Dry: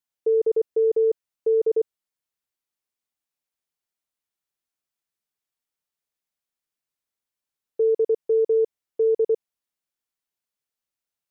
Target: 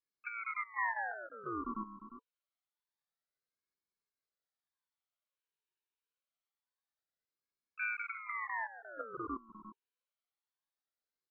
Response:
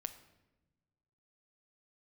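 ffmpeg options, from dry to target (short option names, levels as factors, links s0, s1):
-filter_complex "[0:a]alimiter=limit=0.1:level=0:latency=1:release=113,asplit=3[s0][s1][s2];[s0]bandpass=f=270:t=q:w=8,volume=1[s3];[s1]bandpass=f=2290:t=q:w=8,volume=0.501[s4];[s2]bandpass=f=3010:t=q:w=8,volume=0.355[s5];[s3][s4][s5]amix=inputs=3:normalize=0,flanger=delay=19:depth=2.8:speed=0.29,asplit=4[s6][s7][s8][s9];[s7]asetrate=33038,aresample=44100,atempo=1.33484,volume=0.282[s10];[s8]asetrate=37084,aresample=44100,atempo=1.18921,volume=0.178[s11];[s9]asetrate=66075,aresample=44100,atempo=0.66742,volume=0.2[s12];[s6][s10][s11][s12]amix=inputs=4:normalize=0,aecho=1:1:352:0.251,aeval=exprs='val(0)*sin(2*PI*1300*n/s+1300*0.5/0.26*sin(2*PI*0.26*n/s))':c=same,volume=3.98"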